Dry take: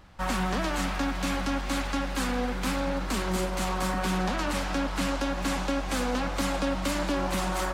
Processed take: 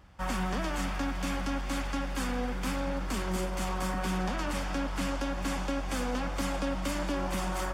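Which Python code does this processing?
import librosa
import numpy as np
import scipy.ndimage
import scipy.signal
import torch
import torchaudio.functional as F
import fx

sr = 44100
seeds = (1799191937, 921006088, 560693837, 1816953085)

y = scipy.signal.sosfilt(scipy.signal.butter(2, 47.0, 'highpass', fs=sr, output='sos'), x)
y = fx.low_shelf(y, sr, hz=67.0, db=9.5)
y = fx.notch(y, sr, hz=4000.0, q=9.7)
y = y * librosa.db_to_amplitude(-4.5)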